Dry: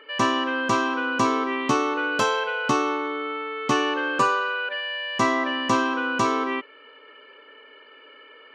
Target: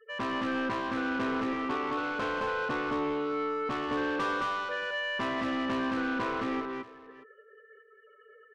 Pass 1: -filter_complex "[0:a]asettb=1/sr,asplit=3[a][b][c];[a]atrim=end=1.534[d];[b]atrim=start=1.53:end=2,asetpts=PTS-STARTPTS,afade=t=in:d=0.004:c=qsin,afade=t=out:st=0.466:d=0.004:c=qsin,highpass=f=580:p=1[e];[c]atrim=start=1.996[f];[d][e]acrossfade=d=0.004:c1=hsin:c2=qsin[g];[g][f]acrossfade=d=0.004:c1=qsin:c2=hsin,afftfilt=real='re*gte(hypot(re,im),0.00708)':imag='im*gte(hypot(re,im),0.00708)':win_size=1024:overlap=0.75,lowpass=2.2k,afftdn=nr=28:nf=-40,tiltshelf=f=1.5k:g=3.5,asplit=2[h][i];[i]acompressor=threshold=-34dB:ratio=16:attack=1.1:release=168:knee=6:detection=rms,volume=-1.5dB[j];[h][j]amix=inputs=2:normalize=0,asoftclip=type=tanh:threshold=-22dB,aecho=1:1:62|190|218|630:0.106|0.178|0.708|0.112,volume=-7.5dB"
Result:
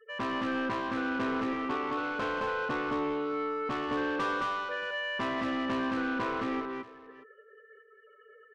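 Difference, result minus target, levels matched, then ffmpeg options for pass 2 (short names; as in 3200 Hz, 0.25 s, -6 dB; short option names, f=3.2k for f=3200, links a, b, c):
compressor: peak gain reduction +7 dB
-filter_complex "[0:a]asettb=1/sr,asplit=3[a][b][c];[a]atrim=end=1.534[d];[b]atrim=start=1.53:end=2,asetpts=PTS-STARTPTS,afade=t=in:d=0.004:c=qsin,afade=t=out:st=0.466:d=0.004:c=qsin,highpass=f=580:p=1[e];[c]atrim=start=1.996[f];[d][e]acrossfade=d=0.004:c1=hsin:c2=qsin[g];[g][f]acrossfade=d=0.004:c1=qsin:c2=hsin,afftfilt=real='re*gte(hypot(re,im),0.00708)':imag='im*gte(hypot(re,im),0.00708)':win_size=1024:overlap=0.75,lowpass=2.2k,afftdn=nr=28:nf=-40,tiltshelf=f=1.5k:g=3.5,asplit=2[h][i];[i]acompressor=threshold=-26.5dB:ratio=16:attack=1.1:release=168:knee=6:detection=rms,volume=-1.5dB[j];[h][j]amix=inputs=2:normalize=0,asoftclip=type=tanh:threshold=-22dB,aecho=1:1:62|190|218|630:0.106|0.178|0.708|0.112,volume=-7.5dB"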